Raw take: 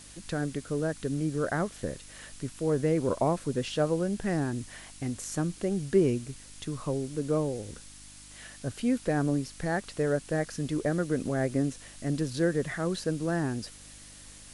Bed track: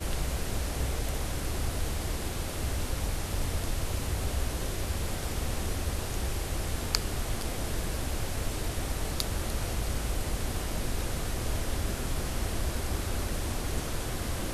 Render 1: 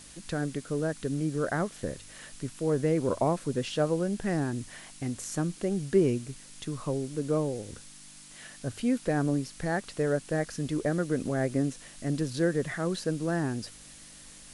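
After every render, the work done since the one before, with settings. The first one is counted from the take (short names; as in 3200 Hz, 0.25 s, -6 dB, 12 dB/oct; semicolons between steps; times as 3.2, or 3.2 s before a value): de-hum 50 Hz, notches 2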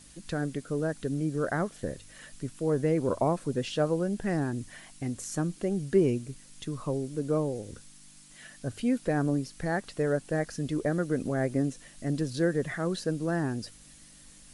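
denoiser 6 dB, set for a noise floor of -50 dBFS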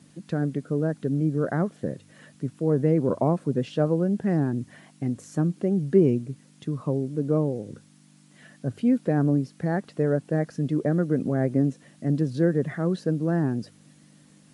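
HPF 130 Hz 24 dB/oct; tilt -3 dB/oct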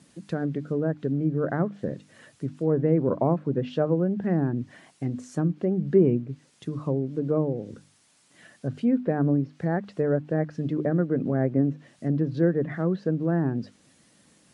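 notches 50/100/150/200/250/300 Hz; treble ducked by the level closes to 2300 Hz, closed at -21.5 dBFS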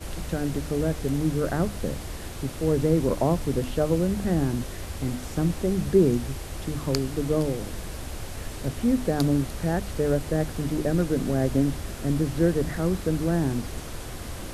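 add bed track -3 dB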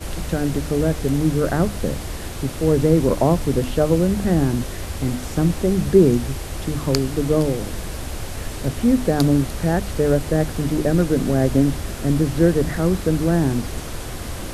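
gain +6 dB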